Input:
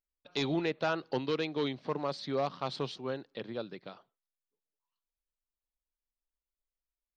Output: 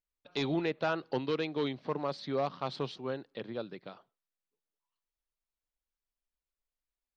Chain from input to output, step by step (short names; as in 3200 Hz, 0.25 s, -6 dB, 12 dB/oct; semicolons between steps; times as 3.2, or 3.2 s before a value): high shelf 7000 Hz -10.5 dB